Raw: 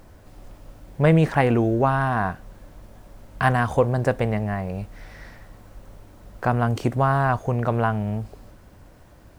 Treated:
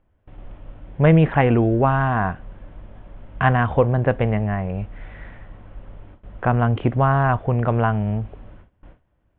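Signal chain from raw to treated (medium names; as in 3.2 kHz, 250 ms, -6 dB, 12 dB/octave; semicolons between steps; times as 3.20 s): gate with hold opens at -37 dBFS; steep low-pass 3.4 kHz 72 dB/octave; bass shelf 130 Hz +4.5 dB; trim +1.5 dB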